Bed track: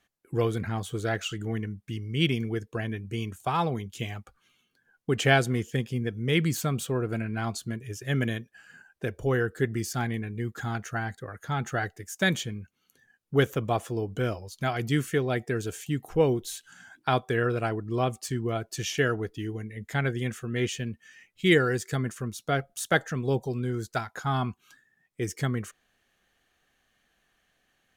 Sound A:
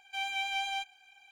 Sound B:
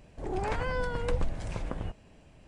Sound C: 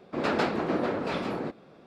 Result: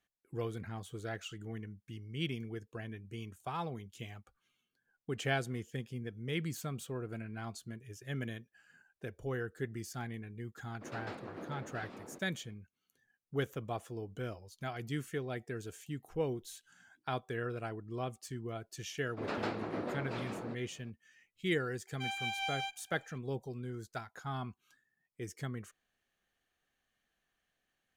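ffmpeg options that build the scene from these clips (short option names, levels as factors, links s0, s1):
-filter_complex "[3:a]asplit=2[s0][s1];[0:a]volume=0.251[s2];[s0]atrim=end=1.86,asetpts=PTS-STARTPTS,volume=0.126,afade=t=in:d=0.004:c=hsin,afade=t=out:st=1.856:d=0.004:c=hsin,adelay=10680[s3];[s1]atrim=end=1.86,asetpts=PTS-STARTPTS,volume=0.299,afade=t=in:d=0.004:c=hsin,afade=t=out:st=1.856:d=0.004:c=hsin,adelay=19040[s4];[1:a]atrim=end=1.31,asetpts=PTS-STARTPTS,volume=0.631,afade=t=in:d=0.004:c=hsin,afade=t=out:st=1.306:d=0.004:c=hsin,adelay=21870[s5];[s2][s3][s4][s5]amix=inputs=4:normalize=0"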